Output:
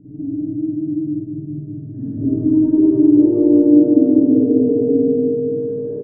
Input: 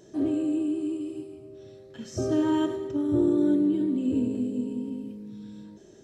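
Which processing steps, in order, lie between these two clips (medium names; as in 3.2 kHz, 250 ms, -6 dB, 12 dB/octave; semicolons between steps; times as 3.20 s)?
comb 6.8 ms, depth 84%; peak limiter -26.5 dBFS, peak gain reduction 16 dB; pre-echo 234 ms -14 dB; low-pass sweep 160 Hz -> 490 Hz, 1.01–3.68 s; on a send: feedback delay 197 ms, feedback 60%, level -3 dB; on the sum: spring tank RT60 1.2 s, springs 47/54 ms, chirp 35 ms, DRR -9 dB; trim +3.5 dB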